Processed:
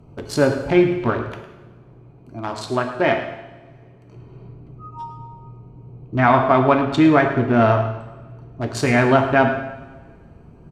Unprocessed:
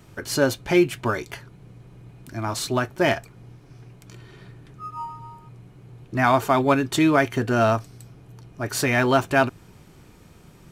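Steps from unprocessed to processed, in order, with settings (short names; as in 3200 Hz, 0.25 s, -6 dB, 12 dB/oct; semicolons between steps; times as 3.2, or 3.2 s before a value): Wiener smoothing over 25 samples; treble ducked by the level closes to 2700 Hz, closed at -20 dBFS; 1.29–4.16 low shelf 180 Hz -10 dB; echo 0.106 s -14 dB; two-slope reverb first 0.97 s, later 2.6 s, from -22 dB, DRR 4.5 dB; gain +3.5 dB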